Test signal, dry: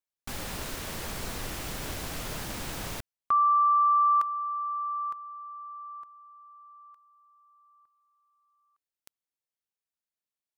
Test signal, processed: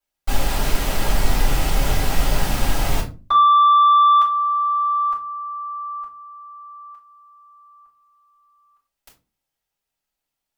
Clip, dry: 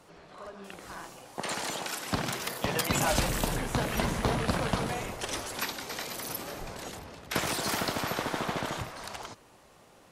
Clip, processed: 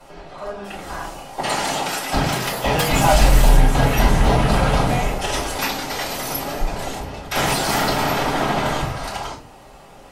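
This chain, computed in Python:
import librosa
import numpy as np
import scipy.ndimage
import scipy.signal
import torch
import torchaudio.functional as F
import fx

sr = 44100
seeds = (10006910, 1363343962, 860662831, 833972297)

p1 = fx.fold_sine(x, sr, drive_db=10, ceiling_db=-11.5)
p2 = x + (p1 * 10.0 ** (-8.5 / 20.0))
p3 = fx.room_shoebox(p2, sr, seeds[0], volume_m3=120.0, walls='furnished', distance_m=5.2)
y = p3 * 10.0 ** (-9.0 / 20.0)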